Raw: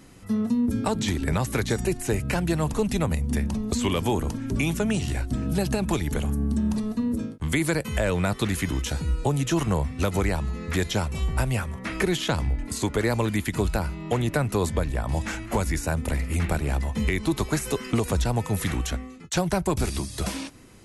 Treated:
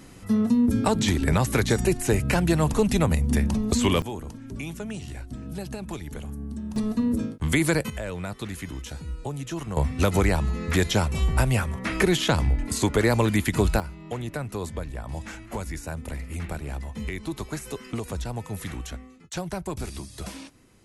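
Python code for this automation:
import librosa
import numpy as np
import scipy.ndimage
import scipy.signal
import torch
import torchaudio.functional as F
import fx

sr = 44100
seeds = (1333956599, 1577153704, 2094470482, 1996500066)

y = fx.gain(x, sr, db=fx.steps((0.0, 3.0), (4.02, -9.5), (6.76, 2.0), (7.9, -8.5), (9.77, 3.0), (13.8, -7.5)))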